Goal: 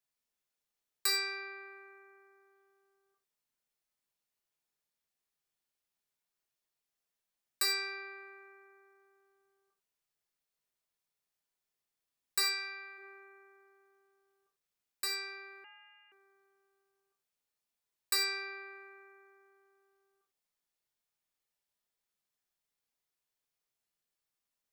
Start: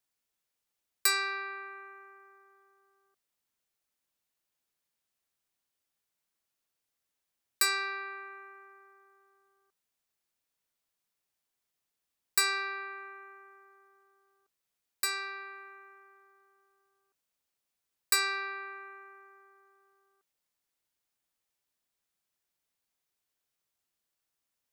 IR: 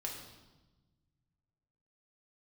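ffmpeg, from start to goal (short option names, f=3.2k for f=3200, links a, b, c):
-filter_complex "[0:a]asplit=3[a][b][c];[a]afade=t=out:st=12.42:d=0.02[d];[b]highpass=f=1k:p=1,afade=t=in:st=12.42:d=0.02,afade=t=out:st=12.97:d=0.02[e];[c]afade=t=in:st=12.97:d=0.02[f];[d][e][f]amix=inputs=3:normalize=0[g];[1:a]atrim=start_sample=2205,atrim=end_sample=4410[h];[g][h]afir=irnorm=-1:irlink=0,asettb=1/sr,asplit=3[i][j][k];[i]atrim=end=15.644[l];[j]atrim=start=15.64:end=16.12,asetpts=PTS-STARTPTS,afade=t=in:d=0.004:c=qsin,afade=t=out:st=0.476:d=0.004:c=qsin,lowpass=f=2.7k:t=q:w=0.5098,lowpass=f=2.7k:t=q:w=0.6013,lowpass=f=2.7k:t=q:w=0.9,lowpass=f=2.7k:t=q:w=2.563,afreqshift=-3200[m];[k]atrim=start=16.116[n];[l][m]acrossfade=d=0.004:c1=hsin:c2=qsin[o];[o][n]acrossfade=d=0.004:c1=qsin:c2=hsin,volume=-3dB"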